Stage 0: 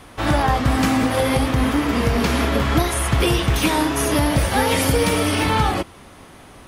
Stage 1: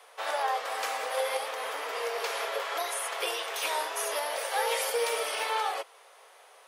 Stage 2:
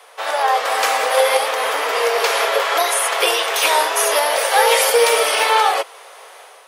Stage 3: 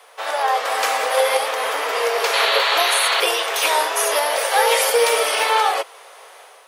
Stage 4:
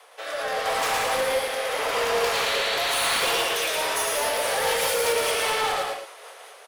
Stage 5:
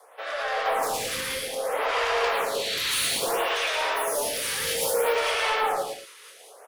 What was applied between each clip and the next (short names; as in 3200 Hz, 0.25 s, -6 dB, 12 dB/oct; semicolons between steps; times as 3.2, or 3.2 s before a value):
Chebyshev high-pass 450 Hz, order 5; gain -8.5 dB
AGC gain up to 6 dB; gain +9 dB
painted sound noise, 2.33–3.21, 760–4600 Hz -18 dBFS; bit-crush 11-bit; gain -2.5 dB
rotary speaker horn 0.85 Hz, later 5 Hz, at 3.52; soft clip -23 dBFS, distortion -9 dB; on a send: loudspeakers at several distances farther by 39 m -3 dB, 61 m -9 dB, 77 m -9 dB
photocell phaser 0.61 Hz; gain +1.5 dB